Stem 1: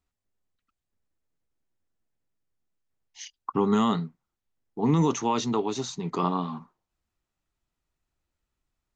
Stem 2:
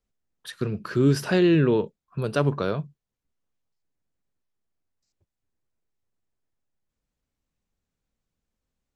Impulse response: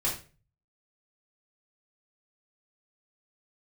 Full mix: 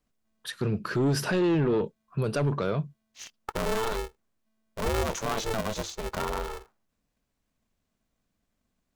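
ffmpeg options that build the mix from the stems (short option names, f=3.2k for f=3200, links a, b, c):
-filter_complex "[0:a]aeval=exprs='val(0)*sgn(sin(2*PI*220*n/s))':c=same,volume=-2dB[a];[1:a]acontrast=88,asoftclip=type=tanh:threshold=-11dB,volume=-5dB[b];[a][b]amix=inputs=2:normalize=0,alimiter=limit=-20dB:level=0:latency=1:release=16"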